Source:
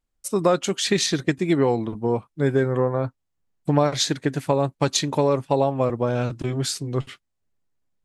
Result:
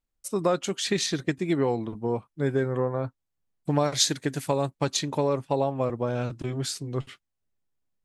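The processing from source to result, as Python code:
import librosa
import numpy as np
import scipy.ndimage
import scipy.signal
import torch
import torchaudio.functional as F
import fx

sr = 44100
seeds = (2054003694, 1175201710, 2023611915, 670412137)

y = fx.high_shelf(x, sr, hz=fx.line((3.69, 5300.0), (4.69, 3700.0)), db=11.0, at=(3.69, 4.69), fade=0.02)
y = y * 10.0 ** (-5.0 / 20.0)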